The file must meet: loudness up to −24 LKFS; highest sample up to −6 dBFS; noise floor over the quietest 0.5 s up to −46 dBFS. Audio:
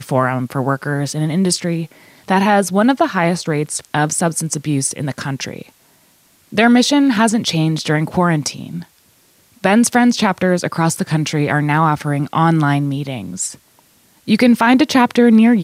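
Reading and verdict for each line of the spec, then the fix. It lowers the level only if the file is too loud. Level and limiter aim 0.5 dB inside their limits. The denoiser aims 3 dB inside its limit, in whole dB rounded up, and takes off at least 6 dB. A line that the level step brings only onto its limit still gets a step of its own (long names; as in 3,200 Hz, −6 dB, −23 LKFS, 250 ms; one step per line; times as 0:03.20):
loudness −16.0 LKFS: out of spec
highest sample −2.0 dBFS: out of spec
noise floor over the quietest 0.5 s −54 dBFS: in spec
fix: level −8.5 dB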